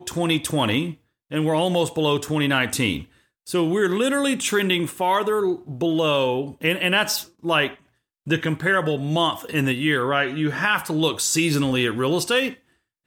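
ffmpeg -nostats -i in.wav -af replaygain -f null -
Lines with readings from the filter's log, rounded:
track_gain = +2.6 dB
track_peak = 0.354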